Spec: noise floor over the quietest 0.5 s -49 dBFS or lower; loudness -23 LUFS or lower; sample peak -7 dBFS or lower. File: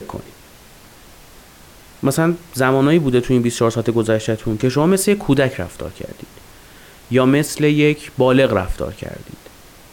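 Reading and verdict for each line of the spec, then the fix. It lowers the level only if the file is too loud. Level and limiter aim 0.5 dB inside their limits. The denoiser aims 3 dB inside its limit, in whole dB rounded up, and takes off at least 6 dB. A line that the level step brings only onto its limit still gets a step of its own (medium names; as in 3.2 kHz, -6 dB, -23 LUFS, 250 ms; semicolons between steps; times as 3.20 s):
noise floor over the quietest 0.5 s -44 dBFS: fail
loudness -17.0 LUFS: fail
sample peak -4.0 dBFS: fail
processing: trim -6.5 dB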